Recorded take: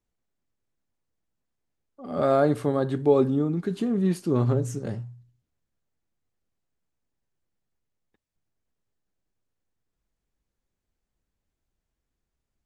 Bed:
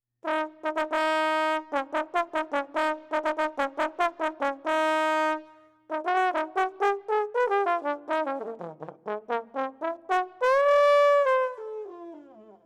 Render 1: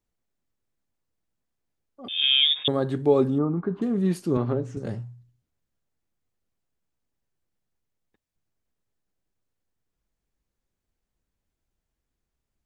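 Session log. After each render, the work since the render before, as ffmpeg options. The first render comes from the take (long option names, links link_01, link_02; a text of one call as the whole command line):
ffmpeg -i in.wav -filter_complex "[0:a]asettb=1/sr,asplit=3[link_01][link_02][link_03];[link_01]atrim=end=2.084[link_04];[link_02]atrim=start=2.08:end=2.68,asetpts=PTS-STARTPTS,afade=type=in:duration=0.004:curve=qsin,afade=type=out:start_time=0.596:duration=0.004:curve=qsin,lowpass=frequency=3200:width_type=q:width=0.5098,lowpass=frequency=3200:width_type=q:width=0.6013,lowpass=frequency=3200:width_type=q:width=0.9,lowpass=frequency=3200:width_type=q:width=2.563,afreqshift=-3800[link_05];[link_03]atrim=start=2.676[link_06];[link_04][link_05]acrossfade=duration=0.004:curve1=hsin:curve2=qsin[link_07];[link_07][link_06]acrossfade=duration=0.004:curve1=qsin:curve2=hsin,asettb=1/sr,asplit=3[link_08][link_09][link_10];[link_08]atrim=end=3.384[link_11];[link_09]atrim=start=3.38:end=3.82,asetpts=PTS-STARTPTS,afade=type=in:duration=0.004:curve=qsin,afade=type=out:start_time=0.436:duration=0.004:curve=qsin,lowpass=frequency=1100:width_type=q:width=3.1[link_12];[link_10]atrim=start=3.816[link_13];[link_11][link_12]acrossfade=duration=0.004:curve1=hsin:curve2=qsin[link_14];[link_14][link_13]acrossfade=duration=0.004:curve1=qsin:curve2=hsin,asettb=1/sr,asplit=3[link_15][link_16][link_17];[link_15]atrim=end=4.374[link_18];[link_16]atrim=start=4.37:end=4.77,asetpts=PTS-STARTPTS,afade=type=in:duration=0.004:curve=qsin,afade=type=out:start_time=0.396:duration=0.004:curve=qsin,highpass=160,lowpass=3200[link_19];[link_17]atrim=start=4.766[link_20];[link_18][link_19]acrossfade=duration=0.004:curve1=hsin:curve2=qsin[link_21];[link_21][link_20]acrossfade=duration=0.004:curve1=qsin:curve2=hsin" out.wav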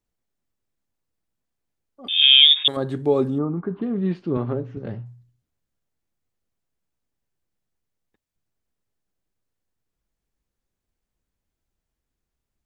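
ffmpeg -i in.wav -filter_complex "[0:a]asettb=1/sr,asplit=3[link_01][link_02][link_03];[link_01]atrim=end=2.074[link_04];[link_02]atrim=start=2.07:end=2.77,asetpts=PTS-STARTPTS,afade=type=in:duration=0.004:curve=qsin,afade=type=out:start_time=0.696:duration=0.004:curve=qsin,tiltshelf=frequency=970:gain=-9.5[link_05];[link_03]atrim=start=2.766[link_06];[link_04][link_05]acrossfade=duration=0.004:curve1=hsin:curve2=qsin[link_07];[link_07][link_06]acrossfade=duration=0.004:curve1=qsin:curve2=hsin,asettb=1/sr,asplit=3[link_08][link_09][link_10];[link_08]atrim=end=3.514[link_11];[link_09]atrim=start=3.51:end=5.06,asetpts=PTS-STARTPTS,afade=type=in:duration=0.004:curve=qsin,afade=type=out:start_time=1.546:duration=0.004:curve=qsin,lowpass=frequency=3600:width=0.5412,lowpass=frequency=3600:width=1.3066[link_12];[link_10]atrim=start=5.056[link_13];[link_11][link_12]acrossfade=duration=0.004:curve1=hsin:curve2=qsin[link_14];[link_14][link_13]acrossfade=duration=0.004:curve1=qsin:curve2=hsin" out.wav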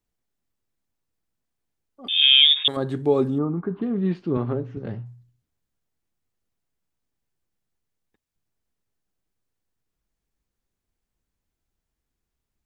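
ffmpeg -i in.wav -filter_complex "[0:a]acrossover=split=3400[link_01][link_02];[link_02]acompressor=threshold=-20dB:ratio=4:attack=1:release=60[link_03];[link_01][link_03]amix=inputs=2:normalize=0,equalizer=frequency=570:width_type=o:width=0.29:gain=-2.5" out.wav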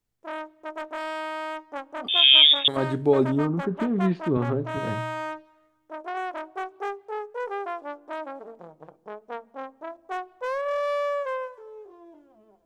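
ffmpeg -i in.wav -i bed.wav -filter_complex "[1:a]volume=-7dB[link_01];[0:a][link_01]amix=inputs=2:normalize=0" out.wav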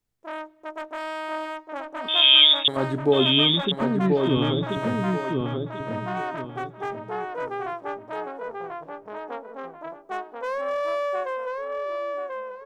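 ffmpeg -i in.wav -filter_complex "[0:a]asplit=2[link_01][link_02];[link_02]adelay=1036,lowpass=frequency=3000:poles=1,volume=-3dB,asplit=2[link_03][link_04];[link_04]adelay=1036,lowpass=frequency=3000:poles=1,volume=0.31,asplit=2[link_05][link_06];[link_06]adelay=1036,lowpass=frequency=3000:poles=1,volume=0.31,asplit=2[link_07][link_08];[link_08]adelay=1036,lowpass=frequency=3000:poles=1,volume=0.31[link_09];[link_01][link_03][link_05][link_07][link_09]amix=inputs=5:normalize=0" out.wav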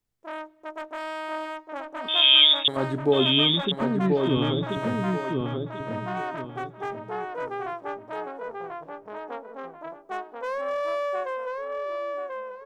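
ffmpeg -i in.wav -af "volume=-1.5dB" out.wav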